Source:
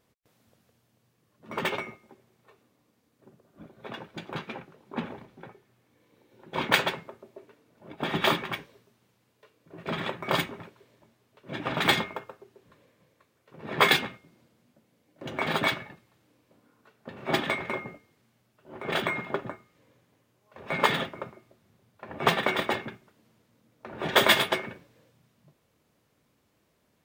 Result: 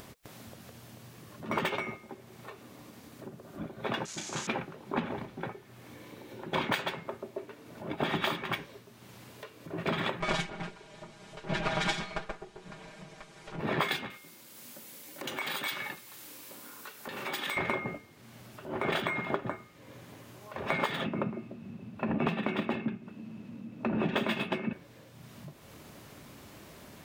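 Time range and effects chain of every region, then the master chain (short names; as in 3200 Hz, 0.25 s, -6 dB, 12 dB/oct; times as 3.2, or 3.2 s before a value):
4.05–4.47 switching spikes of -30 dBFS + ladder low-pass 7300 Hz, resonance 65% + flutter echo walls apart 5.6 m, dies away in 0.24 s
10.2–13.6 minimum comb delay 5 ms + LPF 9000 Hz 24 dB/oct + comb 6.3 ms, depth 74%
14.1–17.57 notch 670 Hz, Q 6.8 + compressor 16:1, threshold -40 dBFS + RIAA curve recording
21.04–24.73 high shelf 5200 Hz -12 dB + small resonant body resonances 210/2600 Hz, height 16 dB, ringing for 30 ms
whole clip: upward compressor, threshold -47 dBFS; notch 480 Hz, Q 12; compressor 12:1, threshold -36 dBFS; gain +8.5 dB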